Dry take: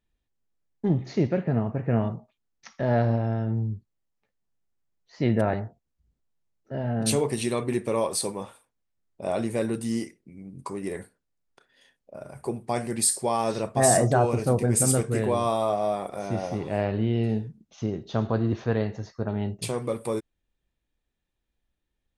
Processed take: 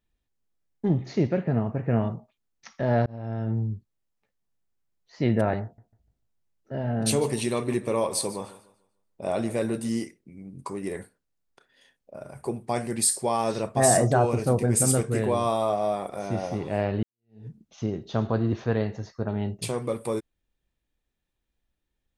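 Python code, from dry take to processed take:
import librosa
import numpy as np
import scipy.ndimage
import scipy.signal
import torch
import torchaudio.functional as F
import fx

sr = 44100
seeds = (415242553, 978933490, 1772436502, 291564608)

y = fx.echo_warbled(x, sr, ms=148, feedback_pct=30, rate_hz=2.8, cents=53, wet_db=-16.5, at=(5.63, 9.89))
y = fx.edit(y, sr, fx.fade_in_span(start_s=3.06, length_s=0.44),
    fx.fade_in_span(start_s=17.03, length_s=0.44, curve='exp'), tone=tone)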